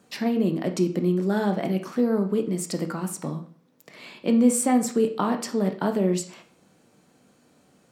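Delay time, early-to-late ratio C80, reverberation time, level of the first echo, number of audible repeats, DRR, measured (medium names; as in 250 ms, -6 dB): no echo, 16.0 dB, 0.45 s, no echo, no echo, 5.0 dB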